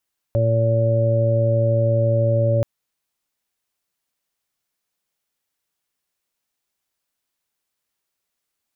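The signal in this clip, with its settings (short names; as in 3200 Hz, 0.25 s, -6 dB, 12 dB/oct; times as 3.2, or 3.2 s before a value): steady additive tone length 2.28 s, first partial 114 Hz, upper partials -14.5/-14/-16.5/-2 dB, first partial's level -17 dB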